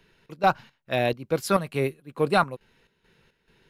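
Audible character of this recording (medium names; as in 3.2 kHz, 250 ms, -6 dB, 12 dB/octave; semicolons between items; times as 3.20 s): chopped level 2.3 Hz, depth 65%, duty 60%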